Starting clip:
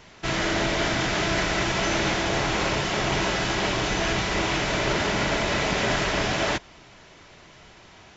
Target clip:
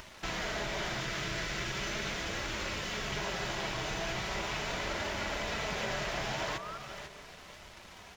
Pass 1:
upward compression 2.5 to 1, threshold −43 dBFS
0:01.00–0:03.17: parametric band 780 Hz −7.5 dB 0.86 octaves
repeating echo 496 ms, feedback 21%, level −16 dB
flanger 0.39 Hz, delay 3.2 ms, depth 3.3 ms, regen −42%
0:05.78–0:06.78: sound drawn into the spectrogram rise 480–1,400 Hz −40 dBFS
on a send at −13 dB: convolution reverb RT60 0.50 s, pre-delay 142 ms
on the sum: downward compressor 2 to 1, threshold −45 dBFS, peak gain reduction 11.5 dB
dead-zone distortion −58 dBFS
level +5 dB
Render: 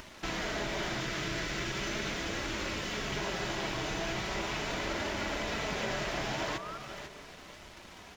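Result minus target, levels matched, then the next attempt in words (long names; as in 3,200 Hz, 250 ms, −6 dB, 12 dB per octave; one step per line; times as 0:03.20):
250 Hz band +3.5 dB
upward compression 2.5 to 1, threshold −43 dBFS
0:01.00–0:03.17: parametric band 780 Hz −7.5 dB 0.86 octaves
repeating echo 496 ms, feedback 21%, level −16 dB
flanger 0.39 Hz, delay 3.2 ms, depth 3.3 ms, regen −42%
0:05.78–0:06.78: sound drawn into the spectrogram rise 480–1,400 Hz −40 dBFS
on a send at −13 dB: convolution reverb RT60 0.50 s, pre-delay 142 ms
on the sum: downward compressor 2 to 1, threshold −45 dBFS, peak gain reduction 11.5 dB
parametric band 290 Hz −6.5 dB 0.78 octaves
dead-zone distortion −58 dBFS
level +5 dB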